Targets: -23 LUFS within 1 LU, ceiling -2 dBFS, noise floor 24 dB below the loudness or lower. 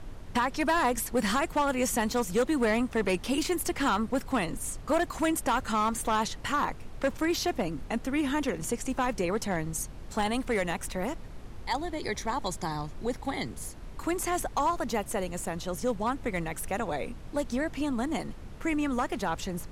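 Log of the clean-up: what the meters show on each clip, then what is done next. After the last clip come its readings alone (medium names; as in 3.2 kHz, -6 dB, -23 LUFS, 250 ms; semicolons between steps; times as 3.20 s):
clipped samples 1.0%; clipping level -20.0 dBFS; noise floor -43 dBFS; noise floor target -54 dBFS; loudness -30.0 LUFS; peak level -20.0 dBFS; loudness target -23.0 LUFS
-> clip repair -20 dBFS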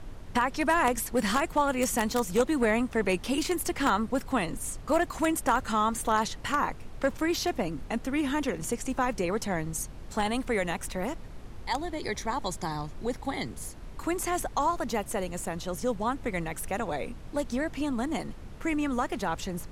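clipped samples 0.0%; noise floor -43 dBFS; noise floor target -54 dBFS
-> noise print and reduce 11 dB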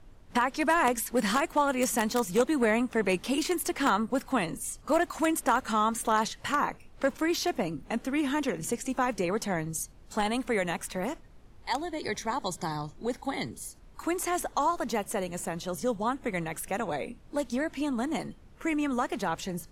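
noise floor -53 dBFS; noise floor target -54 dBFS
-> noise print and reduce 6 dB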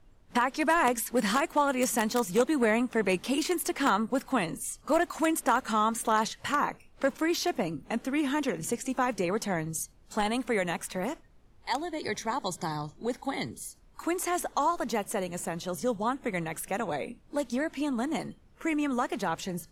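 noise floor -58 dBFS; loudness -29.5 LUFS; peak level -11.0 dBFS; loudness target -23.0 LUFS
-> trim +6.5 dB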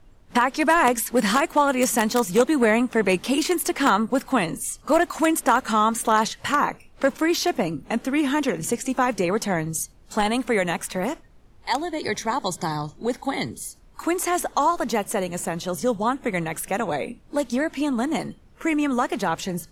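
loudness -23.0 LUFS; peak level -4.5 dBFS; noise floor -51 dBFS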